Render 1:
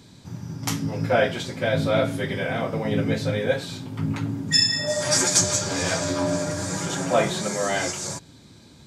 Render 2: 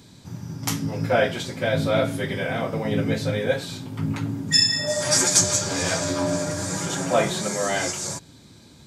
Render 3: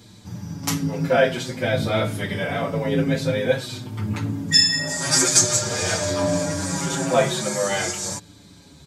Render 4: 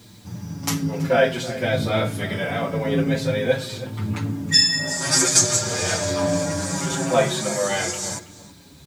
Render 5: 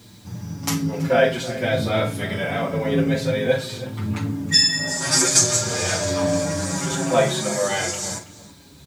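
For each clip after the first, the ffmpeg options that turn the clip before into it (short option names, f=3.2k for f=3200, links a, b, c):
-af "highshelf=f=10k:g=6"
-filter_complex "[0:a]asplit=2[a][b];[b]adelay=6.2,afreqshift=-0.51[c];[a][c]amix=inputs=2:normalize=1,volume=4.5dB"
-filter_complex "[0:a]acrusher=bits=8:mix=0:aa=0.000001,asplit=2[a][b];[b]adelay=326.5,volume=-15dB,highshelf=f=4k:g=-7.35[c];[a][c]amix=inputs=2:normalize=0"
-filter_complex "[0:a]asplit=2[a][b];[b]adelay=43,volume=-11dB[c];[a][c]amix=inputs=2:normalize=0"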